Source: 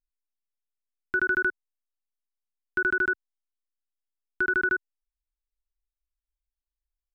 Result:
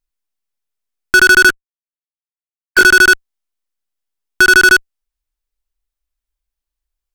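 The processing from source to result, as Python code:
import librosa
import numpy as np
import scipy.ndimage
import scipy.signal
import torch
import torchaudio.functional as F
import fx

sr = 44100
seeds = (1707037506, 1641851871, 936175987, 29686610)

p1 = fx.sine_speech(x, sr, at=(1.49, 2.84))
p2 = fx.fuzz(p1, sr, gain_db=43.0, gate_db=-45.0)
p3 = p1 + (p2 * 10.0 ** (-3.5 / 20.0))
y = p3 * 10.0 ** (8.0 / 20.0)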